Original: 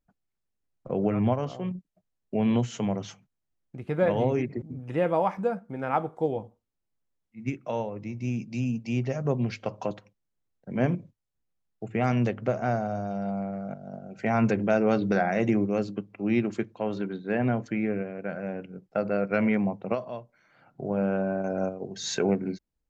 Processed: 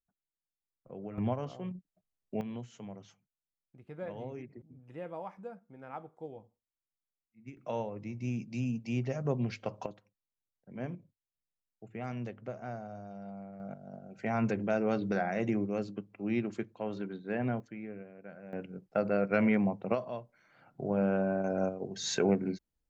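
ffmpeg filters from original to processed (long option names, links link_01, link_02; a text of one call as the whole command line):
ffmpeg -i in.wav -af "asetnsamples=nb_out_samples=441:pad=0,asendcmd='1.18 volume volume -7.5dB;2.41 volume volume -17dB;7.57 volume volume -5dB;9.86 volume volume -14dB;13.6 volume volume -7dB;17.6 volume volume -15dB;18.53 volume volume -2.5dB',volume=-17dB" out.wav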